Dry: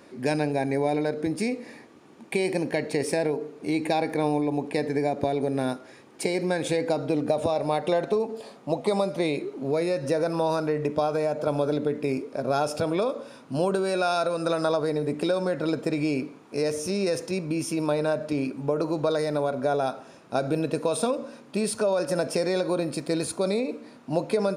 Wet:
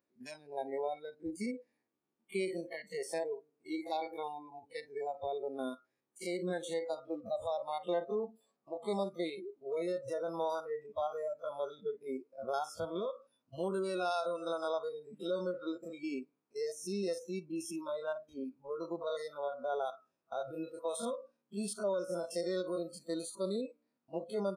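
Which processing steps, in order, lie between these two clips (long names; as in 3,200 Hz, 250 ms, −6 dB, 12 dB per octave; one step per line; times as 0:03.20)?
spectrum averaged block by block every 50 ms
noise reduction from a noise print of the clip's start 26 dB
level −8.5 dB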